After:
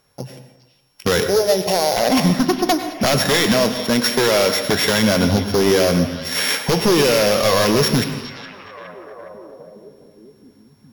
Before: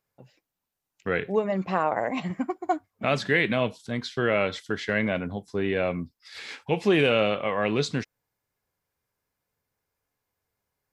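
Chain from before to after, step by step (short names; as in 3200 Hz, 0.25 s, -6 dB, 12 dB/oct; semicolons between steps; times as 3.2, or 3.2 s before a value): sample sorter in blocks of 8 samples; 3.54–4.58 HPF 210 Hz 12 dB/oct; in parallel at -1 dB: limiter -19 dBFS, peak gain reduction 10 dB; on the sum: compressor 2.5:1, threshold -26 dBFS, peak gain reduction 8.5 dB; 1.21–1.97 fixed phaser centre 540 Hz, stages 4; sine folder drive 11 dB, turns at -11 dBFS; on a send: delay with a stepping band-pass 0.415 s, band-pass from 3500 Hz, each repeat -0.7 oct, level -10.5 dB; on the sum: plate-style reverb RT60 1 s, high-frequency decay 0.6×, pre-delay 85 ms, DRR 8.5 dB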